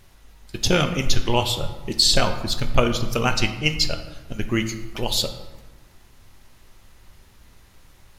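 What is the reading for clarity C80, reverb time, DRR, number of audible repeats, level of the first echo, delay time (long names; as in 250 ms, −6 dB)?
11.5 dB, 1.2 s, 6.0 dB, no echo audible, no echo audible, no echo audible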